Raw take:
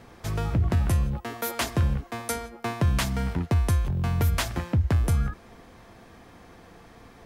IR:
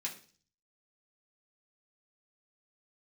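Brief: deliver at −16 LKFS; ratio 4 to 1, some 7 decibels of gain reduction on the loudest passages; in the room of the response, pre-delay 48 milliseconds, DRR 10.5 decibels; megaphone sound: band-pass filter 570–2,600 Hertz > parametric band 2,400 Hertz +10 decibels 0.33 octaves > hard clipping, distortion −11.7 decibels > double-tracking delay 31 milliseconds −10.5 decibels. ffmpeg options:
-filter_complex "[0:a]acompressor=threshold=-27dB:ratio=4,asplit=2[link_01][link_02];[1:a]atrim=start_sample=2205,adelay=48[link_03];[link_02][link_03]afir=irnorm=-1:irlink=0,volume=-11dB[link_04];[link_01][link_04]amix=inputs=2:normalize=0,highpass=570,lowpass=2600,equalizer=frequency=2400:width_type=o:width=0.33:gain=10,asoftclip=type=hard:threshold=-30dB,asplit=2[link_05][link_06];[link_06]adelay=31,volume=-10.5dB[link_07];[link_05][link_07]amix=inputs=2:normalize=0,volume=23.5dB"

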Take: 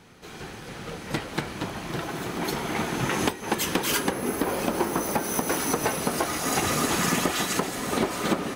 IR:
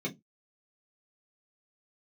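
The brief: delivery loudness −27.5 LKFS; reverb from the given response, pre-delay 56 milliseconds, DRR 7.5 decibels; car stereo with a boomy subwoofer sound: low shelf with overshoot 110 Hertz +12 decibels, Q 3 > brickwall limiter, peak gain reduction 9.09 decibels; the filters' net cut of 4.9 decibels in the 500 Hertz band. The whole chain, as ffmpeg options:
-filter_complex "[0:a]equalizer=frequency=500:width_type=o:gain=-5.5,asplit=2[link_01][link_02];[1:a]atrim=start_sample=2205,adelay=56[link_03];[link_02][link_03]afir=irnorm=-1:irlink=0,volume=-11.5dB[link_04];[link_01][link_04]amix=inputs=2:normalize=0,lowshelf=frequency=110:width_type=q:width=3:gain=12,volume=2dB,alimiter=limit=-17.5dB:level=0:latency=1"

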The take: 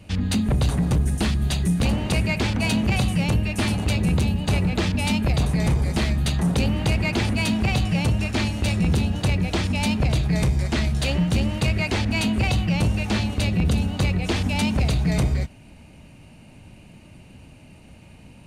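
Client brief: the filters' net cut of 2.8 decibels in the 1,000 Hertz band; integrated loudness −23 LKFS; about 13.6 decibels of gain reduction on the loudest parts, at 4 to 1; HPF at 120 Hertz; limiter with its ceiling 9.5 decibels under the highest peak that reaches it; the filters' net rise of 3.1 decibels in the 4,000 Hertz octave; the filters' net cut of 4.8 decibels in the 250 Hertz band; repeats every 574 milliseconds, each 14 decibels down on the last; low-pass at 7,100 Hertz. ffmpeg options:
ffmpeg -i in.wav -af "highpass=120,lowpass=7100,equalizer=frequency=250:width_type=o:gain=-6,equalizer=frequency=1000:width_type=o:gain=-3.5,equalizer=frequency=4000:width_type=o:gain=4.5,acompressor=threshold=-38dB:ratio=4,alimiter=level_in=7.5dB:limit=-24dB:level=0:latency=1,volume=-7.5dB,aecho=1:1:574|1148:0.2|0.0399,volume=18dB" out.wav

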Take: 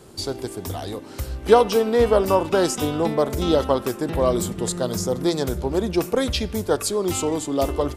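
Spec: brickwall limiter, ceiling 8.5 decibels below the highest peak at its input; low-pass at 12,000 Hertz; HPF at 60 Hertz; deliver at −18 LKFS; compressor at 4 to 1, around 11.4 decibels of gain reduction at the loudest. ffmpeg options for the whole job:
ffmpeg -i in.wav -af "highpass=60,lowpass=12000,acompressor=threshold=-22dB:ratio=4,volume=11.5dB,alimiter=limit=-8dB:level=0:latency=1" out.wav

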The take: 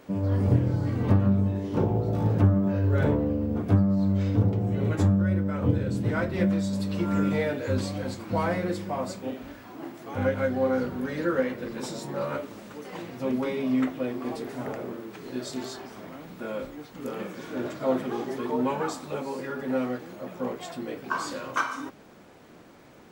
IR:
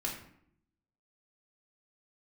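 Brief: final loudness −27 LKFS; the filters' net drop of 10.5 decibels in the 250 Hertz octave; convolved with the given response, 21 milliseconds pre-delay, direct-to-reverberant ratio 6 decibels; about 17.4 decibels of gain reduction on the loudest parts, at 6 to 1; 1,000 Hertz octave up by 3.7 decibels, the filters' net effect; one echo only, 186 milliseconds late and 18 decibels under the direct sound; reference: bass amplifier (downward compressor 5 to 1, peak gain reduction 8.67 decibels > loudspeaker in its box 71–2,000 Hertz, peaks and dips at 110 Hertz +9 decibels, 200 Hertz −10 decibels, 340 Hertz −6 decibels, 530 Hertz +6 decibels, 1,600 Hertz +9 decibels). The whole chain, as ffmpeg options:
-filter_complex "[0:a]equalizer=frequency=250:width_type=o:gain=-7.5,equalizer=frequency=1000:width_type=o:gain=3.5,acompressor=threshold=-37dB:ratio=6,aecho=1:1:186:0.126,asplit=2[link_01][link_02];[1:a]atrim=start_sample=2205,adelay=21[link_03];[link_02][link_03]afir=irnorm=-1:irlink=0,volume=-8.5dB[link_04];[link_01][link_04]amix=inputs=2:normalize=0,acompressor=threshold=-40dB:ratio=5,highpass=frequency=71:width=0.5412,highpass=frequency=71:width=1.3066,equalizer=frequency=110:width_type=q:width=4:gain=9,equalizer=frequency=200:width_type=q:width=4:gain=-10,equalizer=frequency=340:width_type=q:width=4:gain=-6,equalizer=frequency=530:width_type=q:width=4:gain=6,equalizer=frequency=1600:width_type=q:width=4:gain=9,lowpass=frequency=2000:width=0.5412,lowpass=frequency=2000:width=1.3066,volume=15dB"

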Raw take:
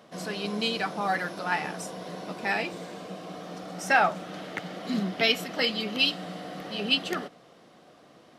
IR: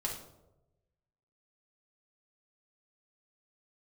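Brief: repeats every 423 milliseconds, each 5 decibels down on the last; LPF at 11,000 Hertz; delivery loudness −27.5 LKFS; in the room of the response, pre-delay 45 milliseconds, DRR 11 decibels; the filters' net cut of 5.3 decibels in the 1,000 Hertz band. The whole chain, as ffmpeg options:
-filter_complex "[0:a]lowpass=11000,equalizer=frequency=1000:width_type=o:gain=-8,aecho=1:1:423|846|1269|1692|2115|2538|2961:0.562|0.315|0.176|0.0988|0.0553|0.031|0.0173,asplit=2[link_01][link_02];[1:a]atrim=start_sample=2205,adelay=45[link_03];[link_02][link_03]afir=irnorm=-1:irlink=0,volume=-13.5dB[link_04];[link_01][link_04]amix=inputs=2:normalize=0,volume=1dB"

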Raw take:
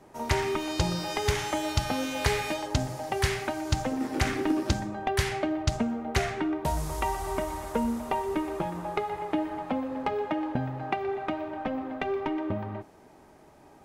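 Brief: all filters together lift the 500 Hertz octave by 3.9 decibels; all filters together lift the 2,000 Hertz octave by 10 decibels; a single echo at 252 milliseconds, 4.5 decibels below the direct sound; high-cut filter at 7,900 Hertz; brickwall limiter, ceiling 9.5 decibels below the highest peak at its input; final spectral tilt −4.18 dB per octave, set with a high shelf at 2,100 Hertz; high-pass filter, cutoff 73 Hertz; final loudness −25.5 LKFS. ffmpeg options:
ffmpeg -i in.wav -af "highpass=73,lowpass=7900,equalizer=frequency=500:width_type=o:gain=4.5,equalizer=frequency=2000:width_type=o:gain=9,highshelf=frequency=2100:gain=5,alimiter=limit=-15dB:level=0:latency=1,aecho=1:1:252:0.596,volume=0.5dB" out.wav

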